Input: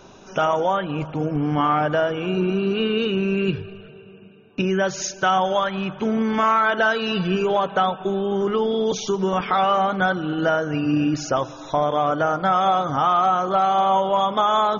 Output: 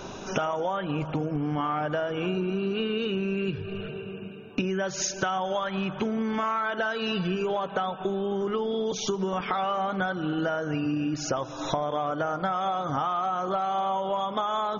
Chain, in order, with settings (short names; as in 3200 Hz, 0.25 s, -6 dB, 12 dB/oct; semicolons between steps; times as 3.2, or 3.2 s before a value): compressor 12:1, threshold -32 dBFS, peak gain reduction 17 dB; gain +7 dB